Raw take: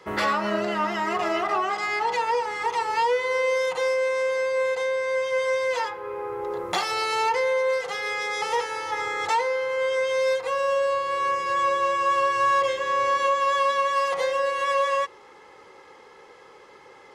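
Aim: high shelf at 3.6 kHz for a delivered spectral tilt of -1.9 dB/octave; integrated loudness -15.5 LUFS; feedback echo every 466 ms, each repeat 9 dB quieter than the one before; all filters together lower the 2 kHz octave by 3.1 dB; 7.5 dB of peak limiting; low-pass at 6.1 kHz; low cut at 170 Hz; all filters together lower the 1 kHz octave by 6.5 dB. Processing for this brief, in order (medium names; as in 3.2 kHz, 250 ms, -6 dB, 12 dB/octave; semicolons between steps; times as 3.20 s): high-pass 170 Hz; low-pass 6.1 kHz; peaking EQ 1 kHz -7 dB; peaking EQ 2 kHz -3.5 dB; treble shelf 3.6 kHz +6.5 dB; peak limiter -21 dBFS; feedback delay 466 ms, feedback 35%, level -9 dB; trim +12.5 dB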